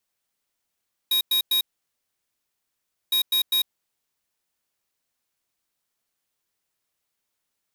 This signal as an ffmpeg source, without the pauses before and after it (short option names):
-f lavfi -i "aevalsrc='0.0891*(2*lt(mod(3790*t,1),0.5)-1)*clip(min(mod(mod(t,2.01),0.2),0.1-mod(mod(t,2.01),0.2))/0.005,0,1)*lt(mod(t,2.01),0.6)':d=4.02:s=44100"